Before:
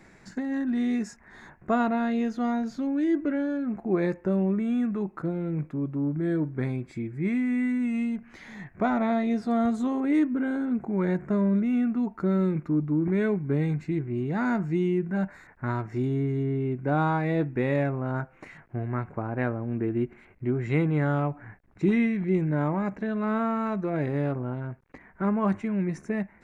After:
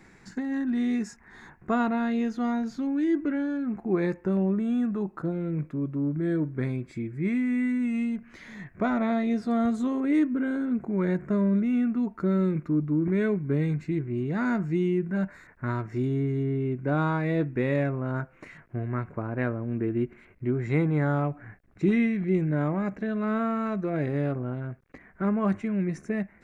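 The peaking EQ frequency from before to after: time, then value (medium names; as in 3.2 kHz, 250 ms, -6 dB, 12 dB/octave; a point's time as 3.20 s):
peaking EQ -8 dB 0.3 oct
610 Hz
from 4.37 s 2.2 kHz
from 5.32 s 810 Hz
from 20.60 s 2.9 kHz
from 21.24 s 910 Hz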